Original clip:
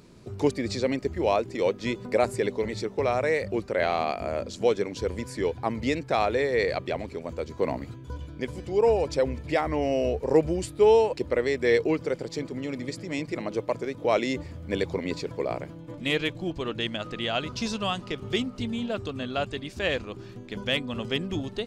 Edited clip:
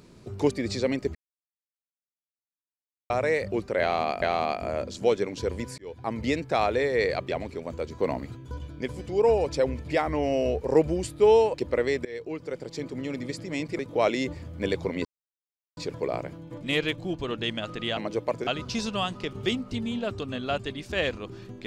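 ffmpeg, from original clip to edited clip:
-filter_complex "[0:a]asplit=10[s0][s1][s2][s3][s4][s5][s6][s7][s8][s9];[s0]atrim=end=1.15,asetpts=PTS-STARTPTS,afade=t=out:st=1.146:d=0.004:c=hsin[s10];[s1]atrim=start=1.15:end=3.1,asetpts=PTS-STARTPTS,volume=0[s11];[s2]atrim=start=3.1:end=4.222,asetpts=PTS-STARTPTS,afade=t=in:d=0.004:c=hsin[s12];[s3]atrim=start=3.808:end=5.37,asetpts=PTS-STARTPTS,afade=t=out:st=1.558:d=0.004:c=hsin[s13];[s4]atrim=start=5.37:end=11.64,asetpts=PTS-STARTPTS,afade=t=in:d=0.42,afade=t=out:st=6.266:d=0.004:c=hsin:silence=0.0749894[s14];[s5]atrim=start=11.64:end=13.382,asetpts=PTS-STARTPTS,afade=t=in:d=0.96:silence=0.0749894[s15];[s6]atrim=start=13.878:end=15.14,asetpts=PTS-STARTPTS,afade=t=out:st=1.258:d=0.004:c=hsin,apad=pad_dur=0.72[s16];[s7]atrim=start=15.14:end=17.342,asetpts=PTS-STARTPTS,afade=t=in:d=0.004:c=hsin[s17];[s8]atrim=start=13.378:end=13.882[s18];[s9]atrim=start=17.338[s19];[s10][s11][s12]concat=n=3:v=0:a=1[s20];[s13][s14][s15]concat=n=3:v=0:a=1[s21];[s20][s21]acrossfade=d=0.004:c1=hsin:c2=hsin[s22];[s16][s17]concat=n=2:v=0:a=1[s23];[s22][s23]acrossfade=d=0.004:c1=hsin:c2=hsin[s24];[s24][s18]acrossfade=d=0.004:c1=hsin:c2=hsin[s25];[s25][s19]acrossfade=d=0.004:c1=hsin:c2=hsin"

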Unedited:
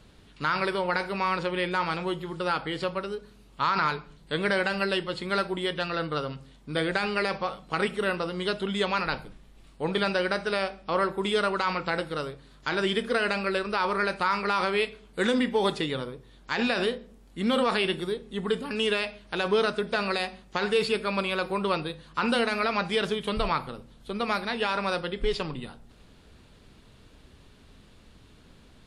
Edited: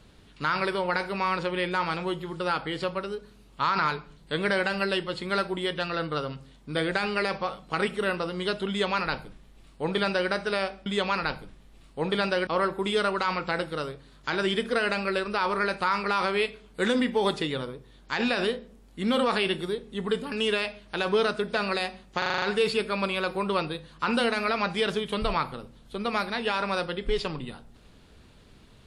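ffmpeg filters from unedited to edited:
-filter_complex "[0:a]asplit=9[s0][s1][s2][s3][s4][s5][s6][s7][s8];[s0]atrim=end=10.862[s9];[s1]atrim=start=8.688:end=10.302[s10];[s2]atrim=start=10.858:end=20.612[s11];[s3]atrim=start=20.568:end=20.612[s12];[s4]atrim=start=20.568:end=20.612[s13];[s5]atrim=start=20.568:end=20.612[s14];[s6]atrim=start=20.568:end=20.612[s15];[s7]atrim=start=20.568:end=20.612[s16];[s8]atrim=start=20.568[s17];[s9][s10]acrossfade=d=0.004:c1=hsin:c2=hsin[s18];[s18][s11]acrossfade=d=0.004:c1=hsin:c2=hsin[s19];[s19][s12]acrossfade=d=0.004:c1=hsin:c2=hsin[s20];[s20][s13]acrossfade=d=0.004:c1=hsin:c2=hsin[s21];[s21][s14]acrossfade=d=0.004:c1=hsin:c2=hsin[s22];[s22][s15]acrossfade=d=0.004:c1=hsin:c2=hsin[s23];[s23][s16]acrossfade=d=0.004:c1=hsin:c2=hsin[s24];[s24][s17]acrossfade=d=0.004:c1=hsin:c2=hsin"

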